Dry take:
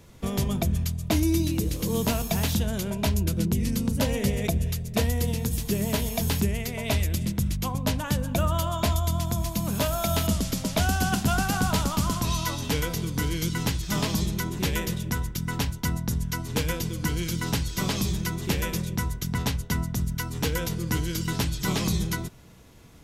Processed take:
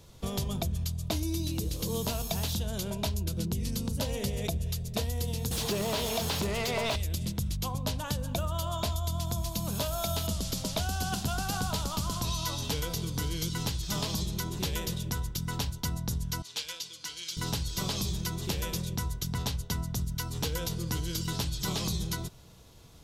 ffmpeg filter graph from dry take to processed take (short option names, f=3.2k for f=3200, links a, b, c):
-filter_complex "[0:a]asettb=1/sr,asplit=3[a][b][c];[a]atrim=end=5.514[d];[b]atrim=start=5.51:end=6.96,asetpts=PTS-STARTPTS,afade=t=in:d=0.004:c=qsin,afade=t=out:st=1.446:d=0.004:c=qsin,highpass=44,asplit=2[e][f];[f]highpass=f=720:p=1,volume=28dB,asoftclip=type=tanh:threshold=-12dB[g];[e][g]amix=inputs=2:normalize=0,lowpass=f=2k:p=1,volume=-6dB[h];[c]atrim=start=6.956[i];[d][h]acrossfade=d=0.004:c1=hsin:c2=qsin[j];[j][i]acrossfade=d=0.004:c1=qsin:c2=hsin,asettb=1/sr,asplit=3[k][l][m];[k]atrim=end=16.424[n];[l]atrim=start=16.42:end=17.37,asetpts=PTS-STARTPTS,afade=t=in:d=0.004:c=qsin,afade=t=out:st=0.946:d=0.004:c=qsin,bandpass=f=3.9k:t=q:w=0.83,aeval=exprs='clip(val(0),-1,0.0531)':c=same[o];[m]atrim=start=17.366[p];[n][o]acrossfade=d=0.004:c1=hsin:c2=qsin[q];[q][p]acrossfade=d=0.004:c1=qsin:c2=hsin,equalizer=f=250:t=o:w=1:g=-6,equalizer=f=2k:t=o:w=1:g=-7,equalizer=f=4k:t=o:w=1:g=5,acompressor=threshold=-26dB:ratio=6,volume=-1.5dB"